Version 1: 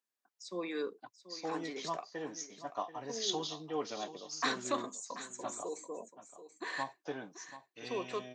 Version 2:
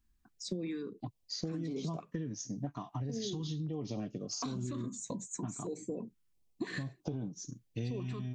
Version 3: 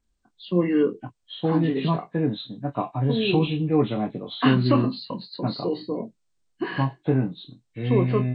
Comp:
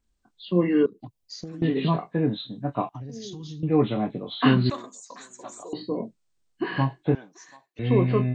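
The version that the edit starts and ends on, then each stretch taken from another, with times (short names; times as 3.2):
3
0.86–1.62 from 2
2.89–3.63 from 2
4.7–5.73 from 1
7.15–7.79 from 1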